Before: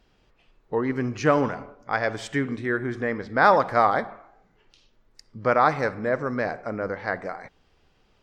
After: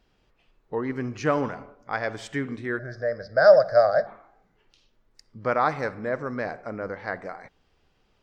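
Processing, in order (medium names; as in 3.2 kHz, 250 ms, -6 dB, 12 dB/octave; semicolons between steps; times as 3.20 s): 2.79–4.07 s: FFT filter 170 Hz 0 dB, 250 Hz -15 dB, 420 Hz -7 dB, 620 Hz +15 dB, 900 Hz -18 dB, 1.6 kHz +3 dB, 2.9 kHz -28 dB, 4.9 kHz +12 dB, 7.5 kHz -12 dB, 11 kHz -16 dB; trim -3.5 dB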